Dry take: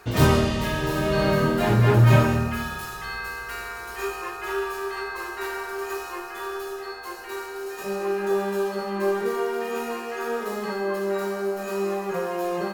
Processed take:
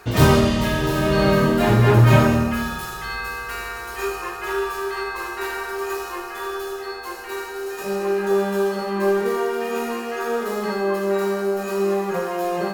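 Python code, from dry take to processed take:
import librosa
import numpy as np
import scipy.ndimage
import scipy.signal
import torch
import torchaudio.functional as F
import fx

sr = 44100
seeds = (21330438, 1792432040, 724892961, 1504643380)

y = fx.echo_feedback(x, sr, ms=81, feedback_pct=37, wet_db=-11.0)
y = y * 10.0 ** (3.5 / 20.0)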